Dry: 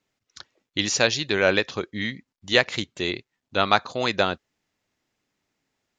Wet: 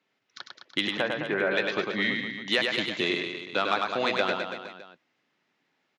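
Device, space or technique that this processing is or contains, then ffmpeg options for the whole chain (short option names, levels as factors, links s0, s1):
AM radio: -filter_complex "[0:a]highpass=140,lowpass=3900,acompressor=threshold=0.0631:ratio=6,asoftclip=type=tanh:threshold=0.188,asplit=3[s0][s1][s2];[s0]afade=t=out:st=0.86:d=0.02[s3];[s1]lowpass=f=1900:w=0.5412,lowpass=f=1900:w=1.3066,afade=t=in:st=0.86:d=0.02,afade=t=out:st=1.5:d=0.02[s4];[s2]afade=t=in:st=1.5:d=0.02[s5];[s3][s4][s5]amix=inputs=3:normalize=0,highpass=f=120:w=0.5412,highpass=f=120:w=1.3066,equalizer=f=2200:t=o:w=2.9:g=4.5,aecho=1:1:100|210|331|464.1|610.5:0.631|0.398|0.251|0.158|0.1"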